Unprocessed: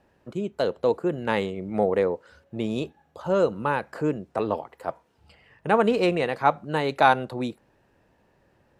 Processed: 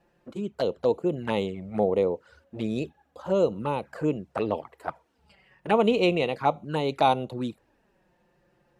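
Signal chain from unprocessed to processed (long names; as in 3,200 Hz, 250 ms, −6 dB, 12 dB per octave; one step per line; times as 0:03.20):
flanger swept by the level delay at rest 5.9 ms, full sweep at −21.5 dBFS
0:04.07–0:06.32: dynamic equaliser 2,300 Hz, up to +5 dB, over −43 dBFS, Q 0.79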